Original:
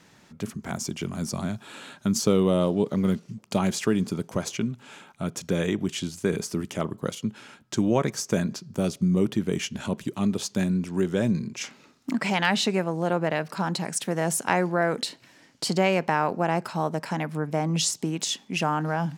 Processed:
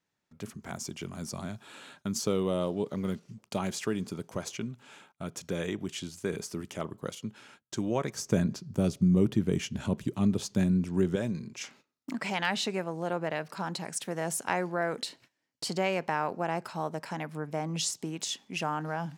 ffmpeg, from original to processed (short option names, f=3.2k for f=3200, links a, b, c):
-filter_complex "[0:a]asettb=1/sr,asplit=3[a][b][c];[a]atrim=end=8.164[d];[b]atrim=start=8.16:end=11.16,asetpts=PTS-STARTPTS,afade=t=in:d=0.004:c=qsin,afade=t=out:st=2.996:d=0.004:c=qsin,lowshelf=f=310:g=11.5[e];[c]atrim=start=11.156[f];[d][e]acrossfade=d=0.004:c1=hsin:c2=qsin[g];[g][f]acrossfade=d=0.004:c1=qsin:c2=hsin,agate=range=-21dB:threshold=-49dB:ratio=16:detection=peak,equalizer=f=200:w=1.1:g=-3.5,volume=-6dB"